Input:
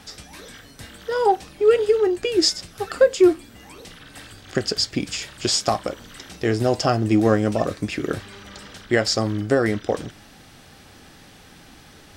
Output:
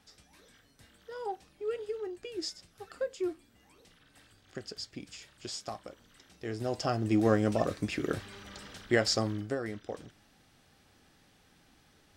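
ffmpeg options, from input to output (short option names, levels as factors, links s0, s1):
-af "volume=0.447,afade=t=in:st=6.36:d=1.07:silence=0.251189,afade=t=out:st=9.14:d=0.44:silence=0.334965"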